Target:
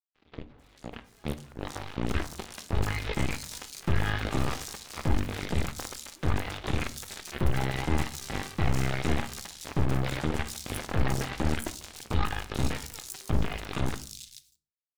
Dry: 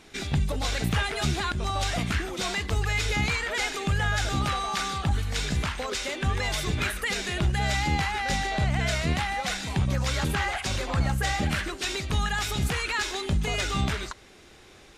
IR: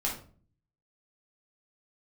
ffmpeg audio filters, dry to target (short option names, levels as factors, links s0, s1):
-filter_complex "[0:a]adynamicequalizer=threshold=0.00447:dfrequency=300:dqfactor=2:tfrequency=300:tqfactor=2:attack=5:release=100:ratio=0.375:range=3.5:mode=boostabove:tftype=bell,acrossover=split=240[s0][s1];[s1]alimiter=level_in=1.12:limit=0.0631:level=0:latency=1:release=180,volume=0.891[s2];[s0][s2]amix=inputs=2:normalize=0,dynaudnorm=f=450:g=7:m=2.66,aeval=exprs='0.531*(cos(1*acos(clip(val(0)/0.531,-1,1)))-cos(1*PI/2))+0.106*(cos(7*acos(clip(val(0)/0.531,-1,1)))-cos(7*PI/2))':c=same,aeval=exprs='sgn(val(0))*max(abs(val(0))-0.0126,0)':c=same,aeval=exprs='(tanh(17.8*val(0)+0.6)-tanh(0.6))/17.8':c=same,acrossover=split=4100[s3][s4];[s4]adelay=440[s5];[s3][s5]amix=inputs=2:normalize=0,asplit=2[s6][s7];[1:a]atrim=start_sample=2205[s8];[s7][s8]afir=irnorm=-1:irlink=0,volume=0.188[s9];[s6][s9]amix=inputs=2:normalize=0,volume=1.19"